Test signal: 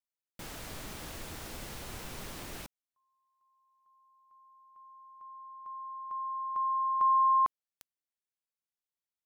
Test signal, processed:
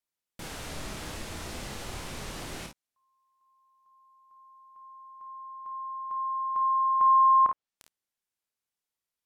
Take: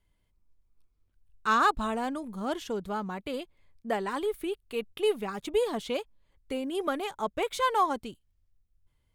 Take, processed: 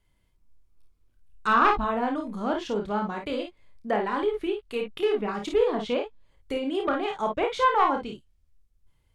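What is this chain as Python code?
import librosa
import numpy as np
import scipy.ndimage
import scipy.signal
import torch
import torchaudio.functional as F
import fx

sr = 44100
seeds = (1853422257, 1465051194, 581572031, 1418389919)

y = np.minimum(x, 2.0 * 10.0 ** (-19.5 / 20.0) - x)
y = fx.env_lowpass_down(y, sr, base_hz=2400.0, full_db=-26.5)
y = fx.room_early_taps(y, sr, ms=(29, 53, 67), db=(-6.0, -6.0, -16.0))
y = F.gain(torch.from_numpy(y), 3.0).numpy()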